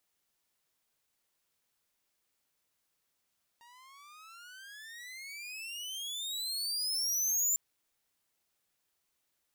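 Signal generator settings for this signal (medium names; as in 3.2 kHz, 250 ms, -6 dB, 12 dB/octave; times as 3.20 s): gliding synth tone saw, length 3.95 s, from 930 Hz, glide +35.5 st, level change +31 dB, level -22 dB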